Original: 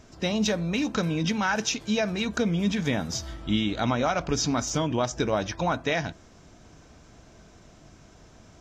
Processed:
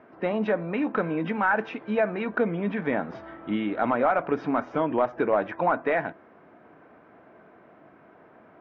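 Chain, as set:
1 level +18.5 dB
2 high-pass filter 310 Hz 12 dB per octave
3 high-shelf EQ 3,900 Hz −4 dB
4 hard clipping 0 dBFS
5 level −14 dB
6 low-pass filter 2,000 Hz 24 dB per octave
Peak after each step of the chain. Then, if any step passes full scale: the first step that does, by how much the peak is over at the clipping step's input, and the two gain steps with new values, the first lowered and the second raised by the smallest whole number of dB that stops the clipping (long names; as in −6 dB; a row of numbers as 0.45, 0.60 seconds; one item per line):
+5.5, +6.5, +6.0, 0.0, −14.0, −12.5 dBFS
step 1, 6.0 dB
step 1 +12.5 dB, step 5 −8 dB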